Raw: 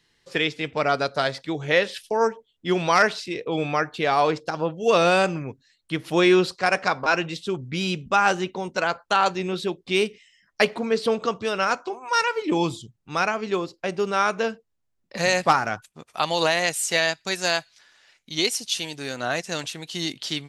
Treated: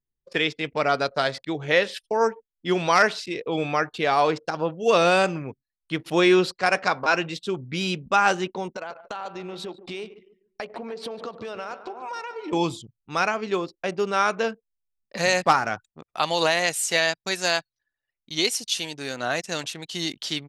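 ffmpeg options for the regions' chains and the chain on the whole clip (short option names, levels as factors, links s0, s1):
-filter_complex "[0:a]asettb=1/sr,asplit=3[s0][s1][s2];[s0]atrim=end=8.744[s3];[s1]atrim=start=8.74:end=12.53,asetpts=PTS-STARTPTS,afade=t=in:d=0.004:c=qsin,afade=t=out:st=3.786:d=0.004:c=qsin,equalizer=f=690:t=o:w=1.4:g=6,acompressor=threshold=0.0282:ratio=6:attack=3.2:release=140:knee=1:detection=peak,aecho=1:1:144|288|432|576|720|864:0.237|0.138|0.0798|0.0463|0.0268|0.0156,atrim=end_sample=167139[s4];[s2]atrim=start=12.526[s5];[s3][s4]acrossfade=d=0.004:c1=hsin:c2=qsin[s6];[s6][s5]acrossfade=d=0.004:c1=qsin:c2=hsin,anlmdn=0.158,lowshelf=f=120:g=-5"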